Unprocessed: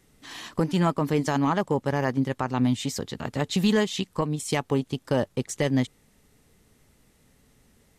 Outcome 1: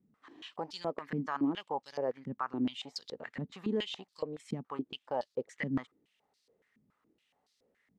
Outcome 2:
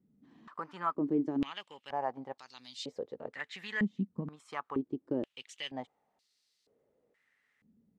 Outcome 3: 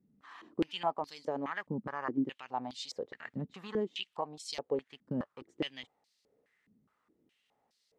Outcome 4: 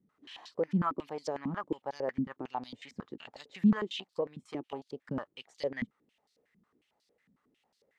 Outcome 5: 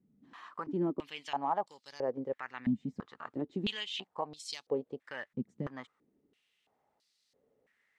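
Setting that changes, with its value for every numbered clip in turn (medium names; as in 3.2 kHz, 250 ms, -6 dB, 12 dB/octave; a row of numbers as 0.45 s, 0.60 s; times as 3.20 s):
step-sequenced band-pass, rate: 7.1 Hz, 2.1 Hz, 4.8 Hz, 11 Hz, 3 Hz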